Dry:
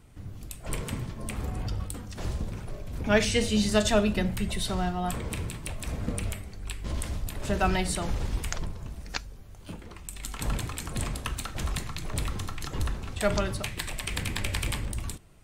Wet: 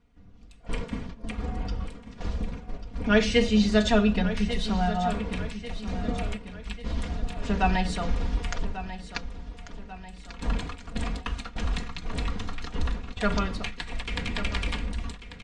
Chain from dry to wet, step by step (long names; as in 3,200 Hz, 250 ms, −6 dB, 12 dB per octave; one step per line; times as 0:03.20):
Bessel low-pass filter 4,400 Hz, order 4
noise gate −34 dBFS, range −11 dB
comb filter 4.2 ms, depth 76%
repeating echo 1,142 ms, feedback 47%, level −12.5 dB